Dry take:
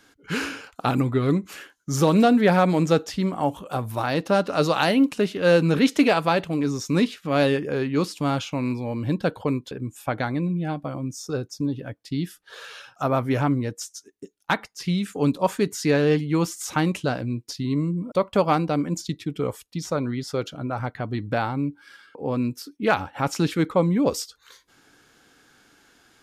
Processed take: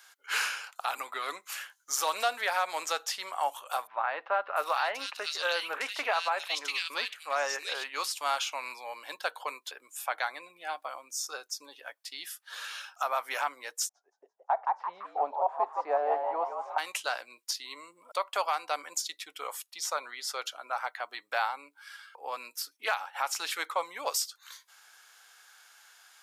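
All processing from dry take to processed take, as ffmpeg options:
ffmpeg -i in.wav -filter_complex "[0:a]asettb=1/sr,asplit=3[link_01][link_02][link_03];[link_01]atrim=end=3.874[link_04];[link_02]atrim=start=3.87:end=7.84,asetpts=PTS-STARTPTS,afade=type=in:duration=0.004:curve=qsin,afade=type=out:start_time=3.966:duration=0.004:curve=qsin,acrossover=split=6000[link_05][link_06];[link_06]acompressor=threshold=-54dB:ratio=4:attack=1:release=60[link_07];[link_05][link_07]amix=inputs=2:normalize=0,acrossover=split=2300[link_08][link_09];[link_09]adelay=690[link_10];[link_08][link_10]amix=inputs=2:normalize=0,atrim=end_sample=175077[link_11];[link_03]atrim=start=7.836[link_12];[link_04][link_11]acrossfade=duration=0.004:curve1=hsin:curve2=qsin[link_13];[link_13][link_12]acrossfade=duration=0.004:curve1=qsin:curve2=hsin,asettb=1/sr,asplit=3[link_14][link_15][link_16];[link_14]atrim=end=13.894[link_17];[link_15]atrim=start=13.89:end=16.78,asetpts=PTS-STARTPTS,afade=type=in:duration=0.004:curve=qsin,afade=type=out:start_time=2.886:duration=0.004:curve=qsin,lowpass=frequency=710:width_type=q:width=6.8,asplit=5[link_18][link_19][link_20][link_21][link_22];[link_19]adelay=169,afreqshift=120,volume=-9dB[link_23];[link_20]adelay=338,afreqshift=240,volume=-17.6dB[link_24];[link_21]adelay=507,afreqshift=360,volume=-26.3dB[link_25];[link_22]adelay=676,afreqshift=480,volume=-34.9dB[link_26];[link_18][link_23][link_24][link_25][link_26]amix=inputs=5:normalize=0,atrim=end_sample=127449[link_27];[link_16]atrim=start=16.776[link_28];[link_17][link_27]acrossfade=duration=0.004:curve1=hsin:curve2=qsin[link_29];[link_29][link_28]acrossfade=duration=0.004:curve1=qsin:curve2=hsin,highpass=frequency=770:width=0.5412,highpass=frequency=770:width=1.3066,highshelf=frequency=7700:gain=8,alimiter=limit=-17.5dB:level=0:latency=1:release=189" out.wav

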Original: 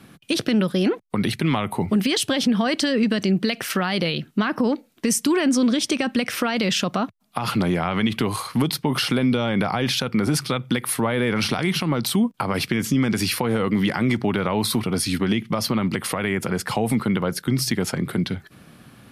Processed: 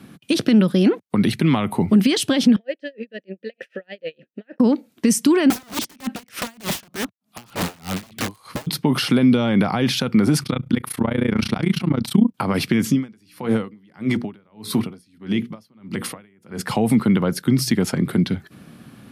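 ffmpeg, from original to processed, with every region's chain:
ffmpeg -i in.wav -filter_complex "[0:a]asettb=1/sr,asplit=3[link_01][link_02][link_03];[link_01]atrim=end=2.564[link_04];[link_02]atrim=start=2.56:end=4.6,asetpts=PTS-STARTPTS,afade=type=in:duration=0.004:curve=qsin,afade=type=out:start_time=2.036:duration=0.004:curve=qsin,acontrast=36,asplit=3[link_05][link_06][link_07];[link_05]bandpass=frequency=530:width_type=q:width=8,volume=0dB[link_08];[link_06]bandpass=frequency=1840:width_type=q:width=8,volume=-6dB[link_09];[link_07]bandpass=frequency=2480:width_type=q:width=8,volume=-9dB[link_10];[link_08][link_09][link_10]amix=inputs=3:normalize=0,aeval=exprs='val(0)*pow(10,-37*(0.5-0.5*cos(2*PI*6.6*n/s))/20)':channel_layout=same[link_11];[link_03]atrim=start=4.596[link_12];[link_04][link_11]acrossfade=duration=0.004:curve1=hsin:curve2=qsin[link_13];[link_13][link_12]acrossfade=duration=0.004:curve1=qsin:curve2=hsin,asettb=1/sr,asplit=3[link_14][link_15][link_16];[link_14]atrim=end=5.504[link_17];[link_15]atrim=start=5.5:end=8.67,asetpts=PTS-STARTPTS,afade=type=in:duration=0.004:curve=qsin,afade=type=out:start_time=3.166:duration=0.004:curve=qsin,aeval=exprs='(mod(7.94*val(0)+1,2)-1)/7.94':channel_layout=same,aeval=exprs='val(0)*pow(10,-28*(0.5-0.5*cos(2*PI*3.3*n/s))/20)':channel_layout=same[link_18];[link_16]atrim=start=8.666[link_19];[link_17][link_18]acrossfade=duration=0.004:curve1=hsin:curve2=qsin[link_20];[link_20][link_19]acrossfade=duration=0.004:curve1=qsin:curve2=hsin,asettb=1/sr,asplit=3[link_21][link_22][link_23];[link_21]atrim=end=10.434[link_24];[link_22]atrim=start=10.43:end=12.33,asetpts=PTS-STARTPTS,afade=type=in:duration=0.004:curve=qsin,afade=type=out:start_time=1.896:duration=0.004:curve=qsin,bass=frequency=250:gain=4,treble=frequency=4000:gain=-3,tremolo=f=29:d=0.947[link_25];[link_23]atrim=start=12.326[link_26];[link_24][link_25]acrossfade=duration=0.004:curve1=hsin:curve2=qsin[link_27];[link_27][link_26]acrossfade=duration=0.004:curve1=qsin:curve2=hsin,asettb=1/sr,asplit=3[link_28][link_29][link_30];[link_28]atrim=end=12.904[link_31];[link_29]atrim=start=12.9:end=16.61,asetpts=PTS-STARTPTS,afade=type=in:duration=0.004:curve=qsin,afade=type=out:start_time=3.706:duration=0.004:curve=qsin,bandreject=frequency=60:width_type=h:width=6,bandreject=frequency=120:width_type=h:width=6,bandreject=frequency=180:width_type=h:width=6,bandreject=frequency=240:width_type=h:width=6,bandreject=frequency=300:width_type=h:width=6,bandreject=frequency=360:width_type=h:width=6,bandreject=frequency=420:width_type=h:width=6,bandreject=frequency=480:width_type=h:width=6,aeval=exprs='val(0)*pow(10,-37*(0.5-0.5*cos(2*PI*1.6*n/s))/20)':channel_layout=same[link_32];[link_30]atrim=start=16.606[link_33];[link_31][link_32]acrossfade=duration=0.004:curve1=hsin:curve2=qsin[link_34];[link_34][link_33]acrossfade=duration=0.004:curve1=qsin:curve2=hsin,highpass=41,equalizer=frequency=230:width_type=o:width=1.5:gain=6" out.wav

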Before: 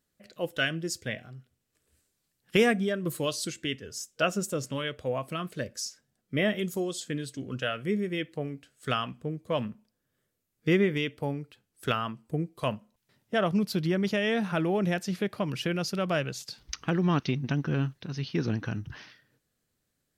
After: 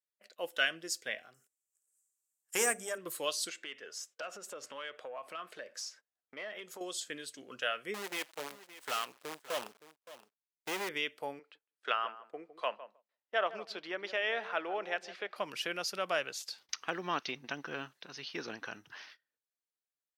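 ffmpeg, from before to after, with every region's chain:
ffmpeg -i in.wav -filter_complex "[0:a]asettb=1/sr,asplit=3[link_01][link_02][link_03];[link_01]atrim=end=1.344[link_04];[link_02]atrim=start=1.34:end=2.98,asetpts=PTS-STARTPTS,afade=type=in:duration=0.004:curve=qsin,afade=type=out:start_time=1.636:duration=0.004:curve=qsin,highshelf=frequency=5300:width_type=q:width=3:gain=12.5,aeval=exprs='(tanh(5.01*val(0)+0.4)-tanh(0.4))/5.01':channel_layout=same,bandreject=frequency=50:width_type=h:width=6,bandreject=frequency=100:width_type=h:width=6,bandreject=frequency=150:width_type=h:width=6,bandreject=frequency=200:width_type=h:width=6,bandreject=frequency=250:width_type=h:width=6,bandreject=frequency=300:width_type=h:width=6,bandreject=frequency=350:width_type=h:width=6,bandreject=frequency=400:width_type=h:width=6,bandreject=frequency=450:width_type=h:width=6[link_05];[link_03]atrim=start=2.976[link_06];[link_04][link_05]acrossfade=duration=0.004:curve1=hsin:curve2=qsin[link_07];[link_07][link_06]acrossfade=duration=0.004:curve1=qsin:curve2=hsin,asettb=1/sr,asplit=3[link_08][link_09][link_10];[link_08]atrim=end=3.494[link_11];[link_09]atrim=start=3.49:end=6.81,asetpts=PTS-STARTPTS,afade=type=in:duration=0.004:curve=qsin,afade=type=out:start_time=3.316:duration=0.004:curve=qsin,asplit=2[link_12][link_13];[link_13]highpass=frequency=720:poles=1,volume=13dB,asoftclip=type=tanh:threshold=-12.5dB[link_14];[link_12][link_14]amix=inputs=2:normalize=0,lowpass=frequency=1500:poles=1,volume=-6dB,acompressor=threshold=-35dB:ratio=6:attack=3.2:release=140:knee=1:detection=peak[link_15];[link_10]atrim=start=6.806[link_16];[link_11][link_15]acrossfade=duration=0.004:curve1=hsin:curve2=qsin[link_17];[link_17][link_16]acrossfade=duration=0.004:curve1=qsin:curve2=hsin,asettb=1/sr,asplit=3[link_18][link_19][link_20];[link_18]atrim=end=7.944[link_21];[link_19]atrim=start=7.94:end=10.89,asetpts=PTS-STARTPTS,afade=type=in:duration=0.004:curve=qsin,afade=type=out:start_time=2.946:duration=0.004:curve=qsin,acrusher=bits=6:dc=4:mix=0:aa=0.000001,asoftclip=type=hard:threshold=-26.5dB,aecho=1:1:568:0.168,atrim=end_sample=130095[link_22];[link_20]atrim=start=10.886[link_23];[link_21][link_22]acrossfade=duration=0.004:curve1=hsin:curve2=qsin[link_24];[link_24][link_23]acrossfade=duration=0.004:curve1=qsin:curve2=hsin,asettb=1/sr,asplit=3[link_25][link_26][link_27];[link_25]atrim=end=11.394[link_28];[link_26]atrim=start=11.39:end=15.36,asetpts=PTS-STARTPTS,afade=type=in:duration=0.004:curve=qsin,afade=type=out:start_time=3.966:duration=0.004:curve=qsin,highpass=370,lowpass=3500,asplit=2[link_29][link_30];[link_30]adelay=158,lowpass=frequency=1000:poles=1,volume=-12.5dB,asplit=2[link_31][link_32];[link_32]adelay=158,lowpass=frequency=1000:poles=1,volume=0.24,asplit=2[link_33][link_34];[link_34]adelay=158,lowpass=frequency=1000:poles=1,volume=0.24[link_35];[link_29][link_31][link_33][link_35]amix=inputs=4:normalize=0,atrim=end_sample=175077[link_36];[link_27]atrim=start=15.356[link_37];[link_28][link_36]acrossfade=duration=0.004:curve1=hsin:curve2=qsin[link_38];[link_38][link_37]acrossfade=duration=0.004:curve1=qsin:curve2=hsin,agate=range=-18dB:threshold=-53dB:ratio=16:detection=peak,highpass=620,volume=-1.5dB" out.wav

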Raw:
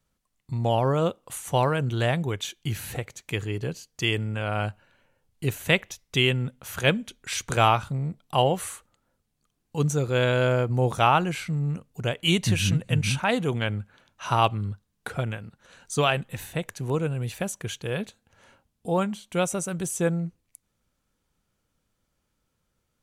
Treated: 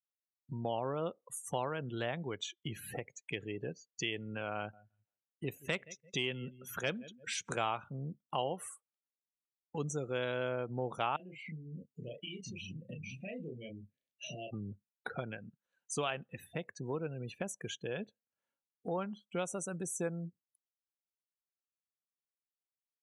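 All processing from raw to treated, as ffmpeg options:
ffmpeg -i in.wav -filter_complex "[0:a]asettb=1/sr,asplit=3[link_01][link_02][link_03];[link_01]atrim=end=4.564[link_04];[link_02]atrim=start=4.56:end=7.5,asetpts=PTS-STARTPTS,afade=type=in:duration=0.004:curve=qsin,afade=type=out:start_time=2.936:duration=0.004:curve=qsin,asoftclip=type=hard:threshold=-13dB,aecho=1:1:171|342|513:0.0944|0.0368|0.0144,atrim=end_sample=129654[link_05];[link_03]atrim=start=7.496[link_06];[link_04][link_05]acrossfade=duration=0.004:curve1=hsin:curve2=qsin[link_07];[link_07][link_06]acrossfade=duration=0.004:curve1=qsin:curve2=hsin,asettb=1/sr,asplit=3[link_08][link_09][link_10];[link_08]atrim=end=11.164[link_11];[link_09]atrim=start=11.16:end=14.53,asetpts=PTS-STARTPTS,afade=type=in:duration=0.004:curve=qsin,afade=type=out:start_time=3.366:duration=0.004:curve=qsin,asuperstop=centerf=1100:order=12:qfactor=1,acompressor=threshold=-36dB:ratio=16:attack=3.2:release=140:knee=1:detection=peak,asplit=2[link_12][link_13];[link_13]adelay=32,volume=-2.5dB[link_14];[link_12][link_14]amix=inputs=2:normalize=0,atrim=end_sample=148617[link_15];[link_10]atrim=start=14.526[link_16];[link_11][link_15]acrossfade=duration=0.004:curve1=hsin:curve2=qsin[link_17];[link_17][link_16]acrossfade=duration=0.004:curve1=qsin:curve2=hsin,afftdn=noise_reduction=36:noise_floor=-38,highpass=190,acompressor=threshold=-42dB:ratio=2" out.wav

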